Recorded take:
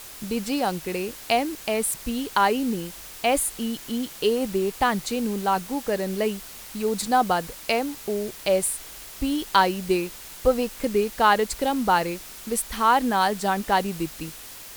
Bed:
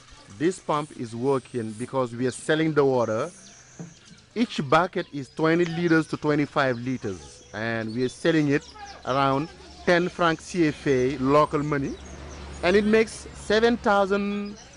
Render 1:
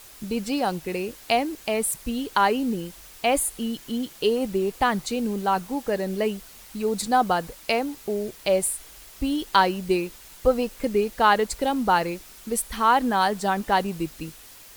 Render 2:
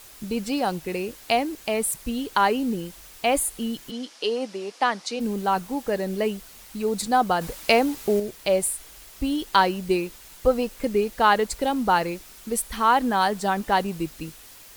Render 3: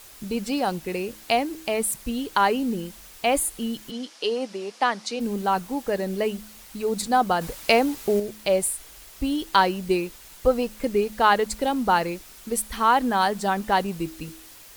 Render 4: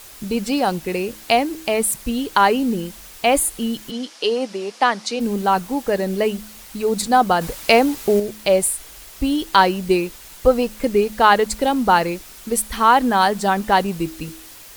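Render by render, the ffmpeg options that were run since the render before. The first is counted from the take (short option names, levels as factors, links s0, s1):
-af "afftdn=nr=6:nf=-41"
-filter_complex "[0:a]asplit=3[s0][s1][s2];[s0]afade=t=out:st=3.9:d=0.02[s3];[s1]highpass=f=270:w=0.5412,highpass=f=270:w=1.3066,equalizer=f=370:t=q:w=4:g=-9,equalizer=f=5200:t=q:w=4:g=6,equalizer=f=7700:t=q:w=4:g=-5,lowpass=f=8600:w=0.5412,lowpass=f=8600:w=1.3066,afade=t=in:st=3.9:d=0.02,afade=t=out:st=5.19:d=0.02[s4];[s2]afade=t=in:st=5.19:d=0.02[s5];[s3][s4][s5]amix=inputs=3:normalize=0,asettb=1/sr,asplit=3[s6][s7][s8];[s6]atrim=end=7.414[s9];[s7]atrim=start=7.41:end=8.2,asetpts=PTS-STARTPTS,afade=t=in:d=0.004:c=qsin,afade=t=out:st=0.786:d=0.004:c=qsin,acontrast=44[s10];[s8]atrim=start=8.196[s11];[s9][s10]acrossfade=d=0.004:c1=hsin:c2=qsin[s12];[s12][s11]acrossfade=d=0.004:c1=qsin:c2=hsin"
-af "bandreject=f=107.1:t=h:w=4,bandreject=f=214.2:t=h:w=4,bandreject=f=321.3:t=h:w=4"
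-af "volume=1.88,alimiter=limit=0.891:level=0:latency=1"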